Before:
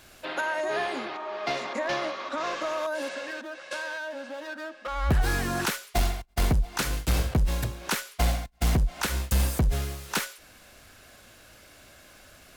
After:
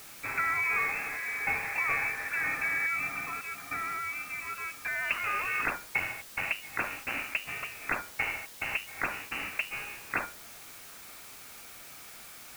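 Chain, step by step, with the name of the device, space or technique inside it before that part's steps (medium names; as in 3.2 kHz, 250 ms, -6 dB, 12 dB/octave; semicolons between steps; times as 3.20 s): scrambled radio voice (band-pass 300–2800 Hz; frequency inversion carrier 2.9 kHz; white noise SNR 14 dB)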